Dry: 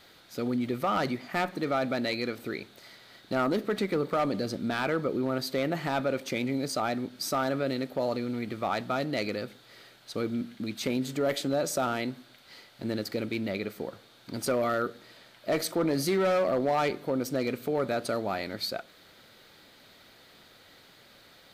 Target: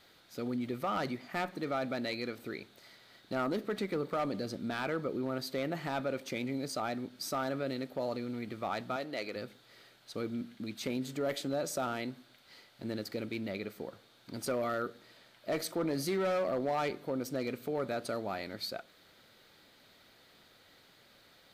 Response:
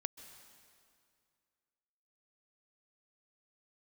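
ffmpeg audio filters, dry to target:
-filter_complex "[0:a]asettb=1/sr,asplit=3[a][b][c];[a]atrim=end=8.964[d];[b]atrim=start=8.96:end=9.36,asetpts=PTS-STARTPTS,afade=t=in:d=0.004:c=qsin,afade=t=out:st=0.396:d=0.004:c=qsin,bass=f=250:g=-12,treble=f=4k:g=-2[e];[c]atrim=start=9.356[f];[d][e]acrossfade=d=0.004:c1=hsin:c2=qsin[g];[g][f]acrossfade=d=0.004:c1=qsin:c2=hsin,volume=-6dB"

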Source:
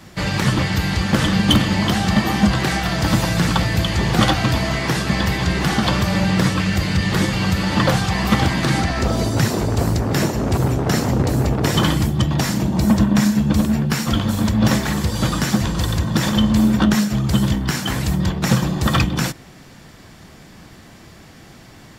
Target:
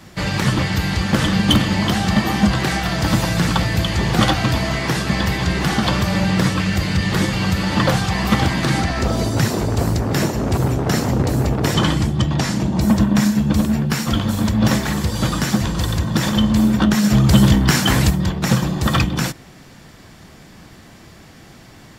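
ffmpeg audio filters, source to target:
-filter_complex "[0:a]asettb=1/sr,asplit=3[a][b][c];[a]atrim=end=11.744[d];[b]atrim=start=11.74:end=12.81,asetpts=PTS-STARTPTS,afade=t=in:d=0.004:c=qsin,afade=t=out:st=1.066:d=0.004:c=qsin,lowpass=8.7k[e];[c]atrim=start=12.806[f];[d][e]acrossfade=d=0.004:c1=hsin:c2=qsin[g];[g][f]acrossfade=d=0.004:c1=qsin:c2=hsin,asplit=3[h][i][j];[h]afade=t=out:st=17.03:d=0.02[k];[i]acontrast=81,afade=t=in:st=17.03:d=0.02,afade=t=out:st=18.09:d=0.02[l];[j]afade=t=in:st=18.09:d=0.02[m];[k][l][m]amix=inputs=3:normalize=0"

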